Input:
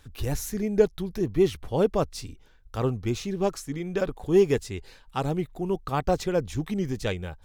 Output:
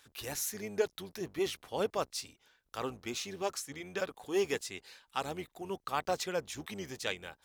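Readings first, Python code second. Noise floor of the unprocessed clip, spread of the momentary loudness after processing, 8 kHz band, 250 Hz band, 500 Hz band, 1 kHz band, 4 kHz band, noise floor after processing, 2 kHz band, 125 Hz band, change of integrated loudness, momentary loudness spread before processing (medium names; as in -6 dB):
-54 dBFS, 9 LU, 0.0 dB, -14.0 dB, -10.5 dB, -5.5 dB, -0.5 dB, -77 dBFS, -2.0 dB, -19.0 dB, -10.0 dB, 9 LU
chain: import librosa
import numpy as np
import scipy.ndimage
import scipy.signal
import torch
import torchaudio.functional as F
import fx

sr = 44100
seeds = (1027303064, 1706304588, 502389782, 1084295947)

y = fx.octave_divider(x, sr, octaves=1, level_db=-5.0)
y = fx.highpass(y, sr, hz=1400.0, slope=6)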